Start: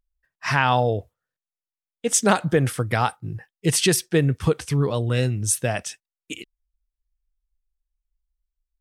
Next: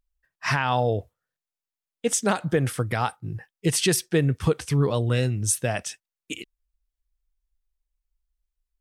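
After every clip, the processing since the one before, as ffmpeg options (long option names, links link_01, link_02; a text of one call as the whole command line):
ffmpeg -i in.wav -af "alimiter=limit=-11dB:level=0:latency=1:release=375" out.wav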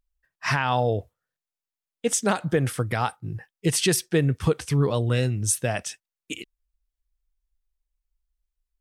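ffmpeg -i in.wav -af anull out.wav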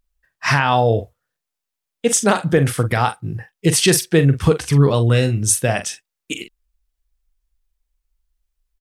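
ffmpeg -i in.wav -filter_complex "[0:a]asplit=2[link_01][link_02];[link_02]adelay=43,volume=-10.5dB[link_03];[link_01][link_03]amix=inputs=2:normalize=0,volume=7dB" out.wav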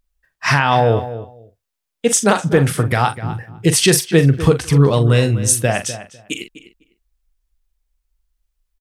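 ffmpeg -i in.wav -filter_complex "[0:a]asplit=2[link_01][link_02];[link_02]adelay=251,lowpass=frequency=2600:poles=1,volume=-13dB,asplit=2[link_03][link_04];[link_04]adelay=251,lowpass=frequency=2600:poles=1,volume=0.17[link_05];[link_01][link_03][link_05]amix=inputs=3:normalize=0,volume=1.5dB" out.wav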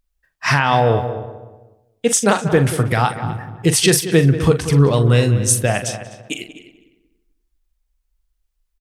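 ffmpeg -i in.wav -filter_complex "[0:a]asplit=2[link_01][link_02];[link_02]adelay=185,lowpass=frequency=1800:poles=1,volume=-12dB,asplit=2[link_03][link_04];[link_04]adelay=185,lowpass=frequency=1800:poles=1,volume=0.43,asplit=2[link_05][link_06];[link_06]adelay=185,lowpass=frequency=1800:poles=1,volume=0.43,asplit=2[link_07][link_08];[link_08]adelay=185,lowpass=frequency=1800:poles=1,volume=0.43[link_09];[link_01][link_03][link_05][link_07][link_09]amix=inputs=5:normalize=0,volume=-1dB" out.wav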